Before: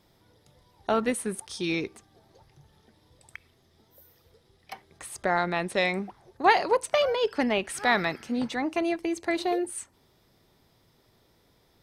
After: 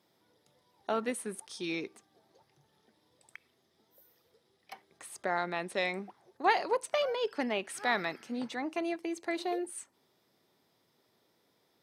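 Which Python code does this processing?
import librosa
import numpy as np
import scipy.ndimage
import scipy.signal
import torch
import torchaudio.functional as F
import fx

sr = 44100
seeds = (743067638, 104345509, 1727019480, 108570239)

y = scipy.signal.sosfilt(scipy.signal.butter(2, 200.0, 'highpass', fs=sr, output='sos'), x)
y = y * librosa.db_to_amplitude(-6.5)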